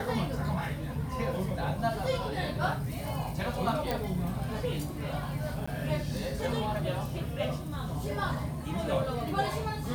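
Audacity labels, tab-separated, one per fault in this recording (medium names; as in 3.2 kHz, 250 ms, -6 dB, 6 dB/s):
3.910000	3.910000	pop
5.660000	5.670000	dropout 15 ms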